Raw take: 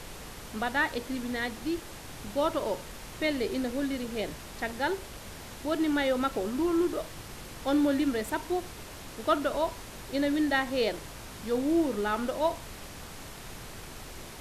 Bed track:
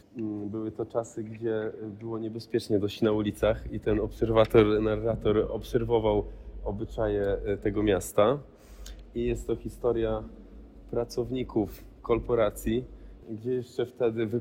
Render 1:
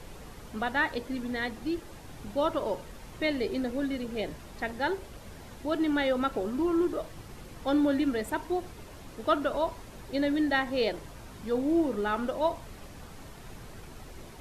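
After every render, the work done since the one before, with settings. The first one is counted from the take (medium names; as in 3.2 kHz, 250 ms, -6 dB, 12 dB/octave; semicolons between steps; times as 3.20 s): noise reduction 8 dB, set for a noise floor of -44 dBFS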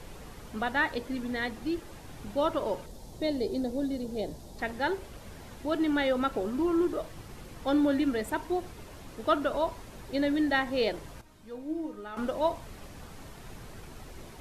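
2.86–4.59 s: high-order bell 1.8 kHz -12 dB; 11.21–12.17 s: feedback comb 310 Hz, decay 0.31 s, mix 80%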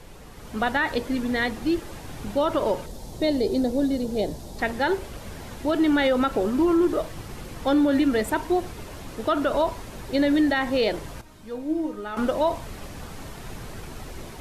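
level rider gain up to 8 dB; peak limiter -13.5 dBFS, peak gain reduction 7.5 dB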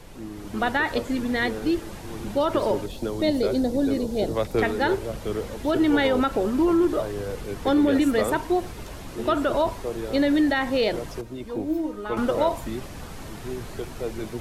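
add bed track -4.5 dB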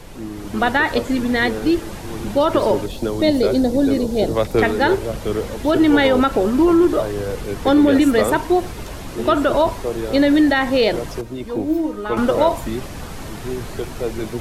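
trim +6.5 dB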